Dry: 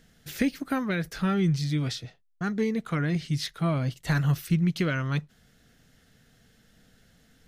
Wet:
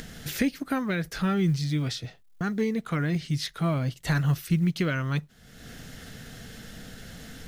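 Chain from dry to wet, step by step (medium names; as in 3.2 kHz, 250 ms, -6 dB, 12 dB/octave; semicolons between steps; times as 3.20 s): upward compressor, threshold -27 dBFS; companded quantiser 8-bit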